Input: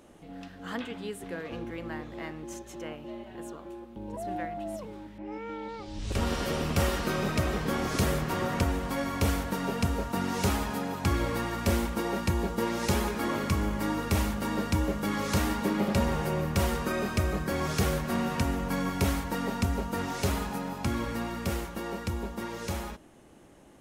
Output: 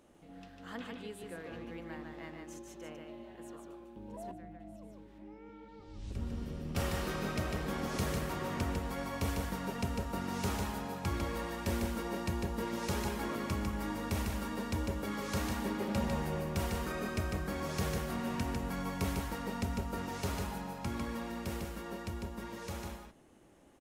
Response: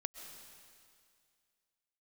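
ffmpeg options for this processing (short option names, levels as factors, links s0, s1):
-filter_complex "[0:a]aecho=1:1:150:0.631,asettb=1/sr,asplit=3[s0][s1][s2];[s0]atrim=end=4.314[s3];[s1]atrim=start=4.31:end=6.75,asetpts=PTS-STARTPTS,afade=t=in:d=0.004:c=qsin,afade=t=out:st=2.436:d=0.004:c=qsin,acrossover=split=320[s4][s5];[s5]acompressor=threshold=0.00316:ratio=3[s6];[s4][s6]amix=inputs=2:normalize=0[s7];[s2]atrim=start=6.746[s8];[s3][s7]acrossfade=d=0.004:c1=hsin:c2=qsin[s9];[s9][s8]acrossfade=d=0.004:c1=qsin:c2=hsin,volume=0.376"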